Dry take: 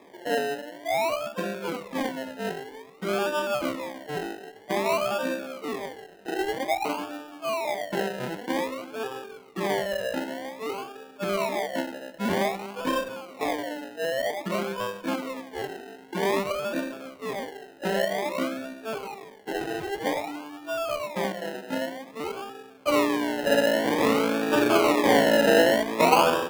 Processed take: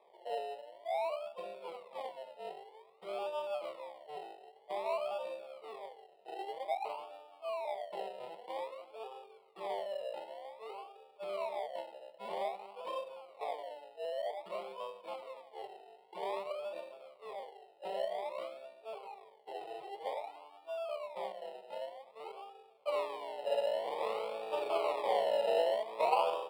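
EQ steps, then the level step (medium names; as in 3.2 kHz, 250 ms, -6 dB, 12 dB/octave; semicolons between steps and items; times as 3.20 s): boxcar filter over 7 samples; high-pass 480 Hz 12 dB/octave; static phaser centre 660 Hz, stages 4; -7.5 dB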